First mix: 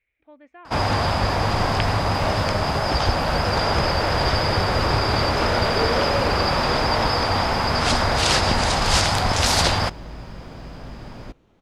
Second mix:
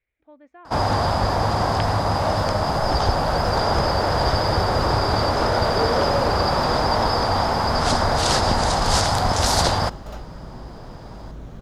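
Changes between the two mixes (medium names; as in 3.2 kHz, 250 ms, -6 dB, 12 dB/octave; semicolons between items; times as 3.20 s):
first sound: add peaking EQ 770 Hz +3 dB 1 oct; second sound: entry +1.25 s; master: add peaking EQ 2.5 kHz -9 dB 0.84 oct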